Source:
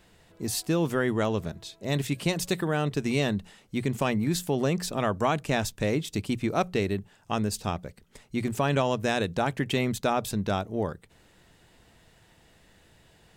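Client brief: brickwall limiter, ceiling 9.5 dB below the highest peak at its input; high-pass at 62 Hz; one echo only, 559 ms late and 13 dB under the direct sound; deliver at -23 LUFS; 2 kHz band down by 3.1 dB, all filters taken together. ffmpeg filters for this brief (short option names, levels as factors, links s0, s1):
-af "highpass=62,equalizer=f=2000:t=o:g=-4,alimiter=limit=0.0841:level=0:latency=1,aecho=1:1:559:0.224,volume=2.99"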